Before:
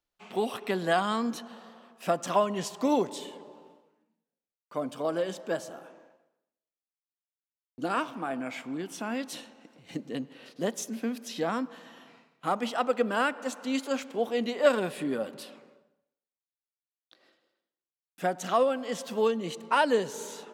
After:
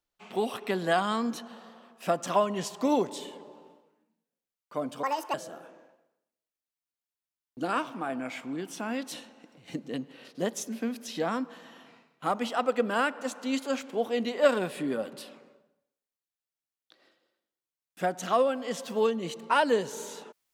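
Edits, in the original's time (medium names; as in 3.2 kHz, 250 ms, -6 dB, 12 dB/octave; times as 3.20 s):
5.03–5.55 s: speed 168%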